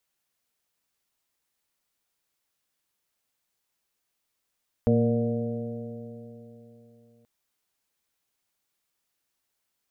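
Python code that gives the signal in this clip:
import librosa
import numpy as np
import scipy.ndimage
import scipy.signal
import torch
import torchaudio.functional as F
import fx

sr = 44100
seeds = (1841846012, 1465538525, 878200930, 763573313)

y = fx.additive_stiff(sr, length_s=2.38, hz=115.0, level_db=-22.5, upper_db=(2.0, -18, 0, -6.5, -16.5), decay_s=3.49, stiffness=0.0026)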